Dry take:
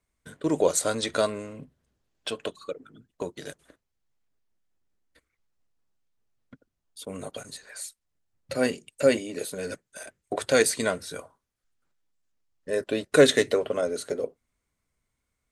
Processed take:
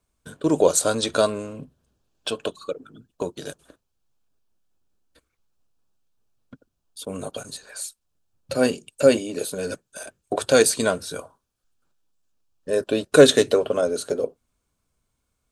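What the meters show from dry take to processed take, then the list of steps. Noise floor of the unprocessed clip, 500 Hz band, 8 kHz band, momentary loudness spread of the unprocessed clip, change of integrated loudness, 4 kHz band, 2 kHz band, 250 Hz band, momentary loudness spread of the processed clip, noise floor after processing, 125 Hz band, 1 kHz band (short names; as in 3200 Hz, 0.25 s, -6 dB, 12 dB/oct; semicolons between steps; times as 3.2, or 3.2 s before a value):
-82 dBFS, +5.0 dB, +5.0 dB, 19 LU, +4.5 dB, +4.5 dB, +1.5 dB, +5.0 dB, 19 LU, -77 dBFS, +5.0 dB, +4.5 dB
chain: bell 2000 Hz -14 dB 0.26 oct; gain +5 dB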